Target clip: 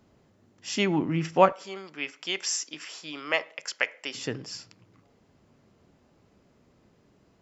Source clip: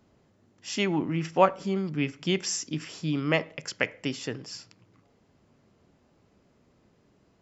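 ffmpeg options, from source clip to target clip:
-filter_complex "[0:a]asettb=1/sr,asplit=3[s0][s1][s2];[s0]atrim=end=1.524[s3];[s1]atrim=start=1.52:end=4.15,asetpts=PTS-STARTPTS,afade=t=in:d=0.004:c=qsin,afade=t=out:st=2.626:d=0.004:c=qsin,highpass=670[s4];[s2]atrim=start=4.146[s5];[s3][s4]acrossfade=d=0.004:c1=hsin:c2=qsin[s6];[s6][s5]acrossfade=d=0.004:c1=qsin:c2=hsin,volume=1.19"

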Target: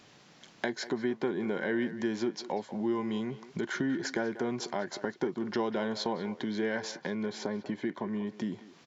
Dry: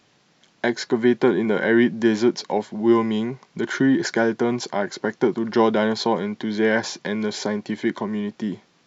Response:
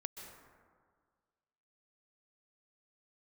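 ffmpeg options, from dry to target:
-filter_complex "[0:a]acompressor=threshold=0.0112:ratio=2.5,asettb=1/sr,asplit=3[s0][s1][s2];[s0]atrim=end=6.914[s3];[s1]atrim=start=6.91:end=8.27,asetpts=PTS-STARTPTS,afade=t=in:d=0.004:c=qsin,afade=t=out:st=1.356:d=0.004:c=qsin,highshelf=f=2900:g=-8[s4];[s2]atrim=start=8.266[s5];[s3][s4]acrossfade=d=0.004:c1=hsin:c2=qsin[s6];[s6][s5]acrossfade=d=0.004:c1=qsin:c2=hsin,asplit=2[s7][s8];[s8]adelay=190,highpass=300,lowpass=3400,asoftclip=type=hard:threshold=0.0447,volume=0.224[s9];[s7][s9]amix=inputs=2:normalize=0,volume=1.33"

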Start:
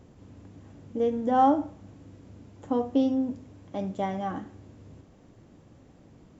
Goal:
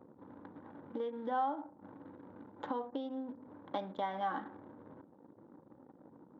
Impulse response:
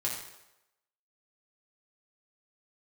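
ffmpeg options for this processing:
-af "acompressor=threshold=0.0141:ratio=16,bandreject=f=690:w=12,anlmdn=0.00158,highpass=400,equalizer=f=410:t=q:w=4:g=-6,equalizer=f=650:t=q:w=4:g=-4,equalizer=f=930:t=q:w=4:g=6,equalizer=f=1500:t=q:w=4:g=5,equalizer=f=2600:t=q:w=4:g=-7,equalizer=f=3700:t=q:w=4:g=8,lowpass=f=4400:w=0.5412,lowpass=f=4400:w=1.3066,volume=2.37"

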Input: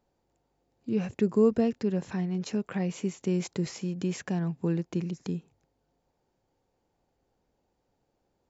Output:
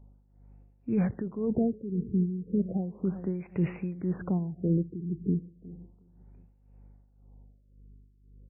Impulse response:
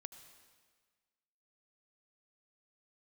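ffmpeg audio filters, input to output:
-filter_complex "[0:a]alimiter=limit=0.0631:level=0:latency=1:release=12,asplit=2[s0][s1];[1:a]atrim=start_sample=2205[s2];[s1][s2]afir=irnorm=-1:irlink=0,volume=0.708[s3];[s0][s3]amix=inputs=2:normalize=0,aeval=exprs='val(0)+0.00141*(sin(2*PI*50*n/s)+sin(2*PI*2*50*n/s)/2+sin(2*PI*3*50*n/s)/3+sin(2*PI*4*50*n/s)/4+sin(2*PI*5*50*n/s)/5)':c=same,aecho=1:1:362|724|1086:0.15|0.0539|0.0194,tremolo=f=1.9:d=0.75,lowshelf=f=330:g=6,afftfilt=real='re*lt(b*sr/1024,440*pow(2900/440,0.5+0.5*sin(2*PI*0.34*pts/sr)))':imag='im*lt(b*sr/1024,440*pow(2900/440,0.5+0.5*sin(2*PI*0.34*pts/sr)))':win_size=1024:overlap=0.75"

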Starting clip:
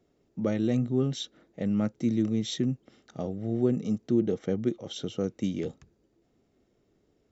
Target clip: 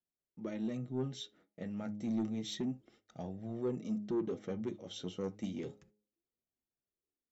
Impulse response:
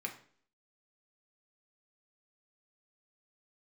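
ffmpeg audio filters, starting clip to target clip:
-filter_complex "[0:a]agate=range=0.1:threshold=0.00158:ratio=16:detection=peak,dynaudnorm=f=650:g=5:m=1.5,bandreject=f=104.1:t=h:w=4,bandreject=f=208.2:t=h:w=4,bandreject=f=312.3:t=h:w=4,bandreject=f=416.4:t=h:w=4,bandreject=f=520.5:t=h:w=4,bandreject=f=624.6:t=h:w=4,bandreject=f=728.7:t=h:w=4,bandreject=f=832.8:t=h:w=4,flanger=delay=1.1:depth=9.9:regen=33:speed=0.3:shape=sinusoidal,asoftclip=type=tanh:threshold=0.0794,asplit=2[s0][s1];[1:a]atrim=start_sample=2205,atrim=end_sample=3528[s2];[s1][s2]afir=irnorm=-1:irlink=0,volume=0.355[s3];[s0][s3]amix=inputs=2:normalize=0,volume=0.376"

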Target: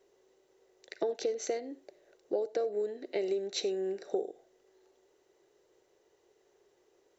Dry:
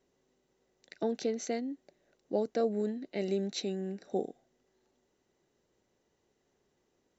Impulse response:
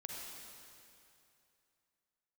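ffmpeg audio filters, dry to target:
-filter_complex "[0:a]lowshelf=f=300:t=q:w=3:g=-8.5,acompressor=threshold=0.02:ratio=6,asplit=2[s0][s1];[1:a]atrim=start_sample=2205,afade=t=out:st=0.15:d=0.01,atrim=end_sample=7056[s2];[s1][s2]afir=irnorm=-1:irlink=0,volume=0.531[s3];[s0][s3]amix=inputs=2:normalize=0,volume=1.33"

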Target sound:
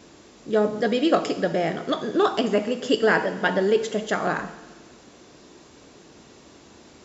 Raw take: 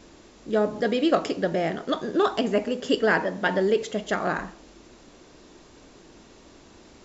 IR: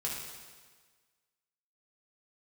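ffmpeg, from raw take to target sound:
-filter_complex "[0:a]highpass=72,asplit=2[s0][s1];[s1]highshelf=f=5500:g=9[s2];[1:a]atrim=start_sample=2205[s3];[s2][s3]afir=irnorm=-1:irlink=0,volume=0.237[s4];[s0][s4]amix=inputs=2:normalize=0"

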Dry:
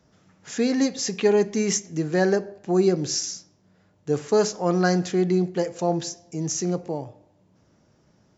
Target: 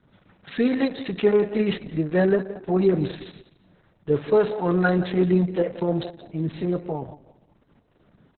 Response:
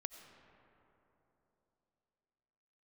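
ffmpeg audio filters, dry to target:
-af "flanger=delay=0.6:depth=1.6:regen=-50:speed=1.7:shape=sinusoidal,aecho=1:1:176|352|528:0.188|0.0527|0.0148,acontrast=57" -ar 48000 -c:a libopus -b:a 6k

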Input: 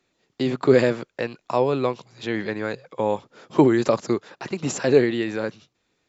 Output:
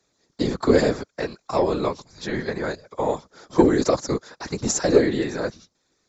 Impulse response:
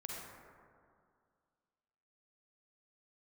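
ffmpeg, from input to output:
-af "lowpass=f=6700:w=0.5412,lowpass=f=6700:w=1.3066,equalizer=f=2800:t=o:w=0.69:g=-13,acontrast=26,crystalizer=i=3.5:c=0,afftfilt=real='hypot(re,im)*cos(2*PI*random(0))':imag='hypot(re,im)*sin(2*PI*random(1))':win_size=512:overlap=0.75,volume=1.12"

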